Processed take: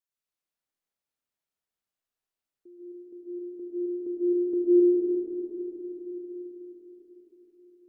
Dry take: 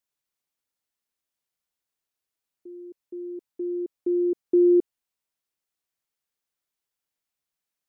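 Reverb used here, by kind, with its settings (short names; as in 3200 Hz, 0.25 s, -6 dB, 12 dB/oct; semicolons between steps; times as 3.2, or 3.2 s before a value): digital reverb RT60 4.8 s, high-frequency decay 0.35×, pre-delay 80 ms, DRR -5.5 dB; gain -9 dB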